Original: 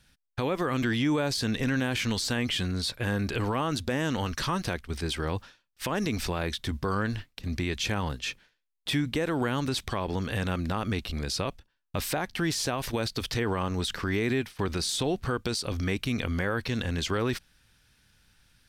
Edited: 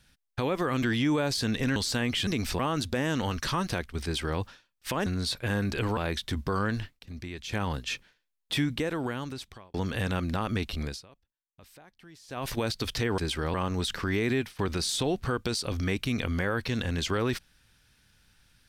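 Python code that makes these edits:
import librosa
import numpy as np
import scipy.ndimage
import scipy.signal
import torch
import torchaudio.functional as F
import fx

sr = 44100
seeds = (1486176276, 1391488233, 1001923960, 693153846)

y = fx.edit(x, sr, fx.cut(start_s=1.76, length_s=0.36),
    fx.swap(start_s=2.63, length_s=0.91, other_s=6.01, other_length_s=0.32),
    fx.duplicate(start_s=4.99, length_s=0.36, to_s=13.54),
    fx.fade_down_up(start_s=7.08, length_s=1.07, db=-9.0, fade_s=0.27, curve='log'),
    fx.fade_out_span(start_s=9.0, length_s=1.1),
    fx.fade_down_up(start_s=11.2, length_s=1.62, db=-23.5, fade_s=0.18), tone=tone)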